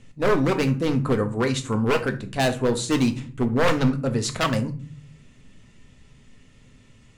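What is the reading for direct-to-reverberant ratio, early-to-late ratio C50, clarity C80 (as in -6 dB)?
6.5 dB, 14.0 dB, 19.5 dB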